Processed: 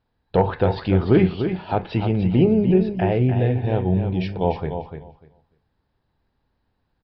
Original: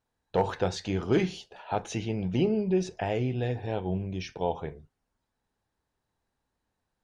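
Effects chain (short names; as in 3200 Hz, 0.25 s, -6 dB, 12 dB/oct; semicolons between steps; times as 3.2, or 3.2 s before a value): treble ducked by the level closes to 2700 Hz, closed at -26 dBFS; low shelf 280 Hz +7 dB; on a send: feedback echo 0.296 s, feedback 16%, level -8 dB; on the sum: downsampling 11025 Hz; gain +5.5 dB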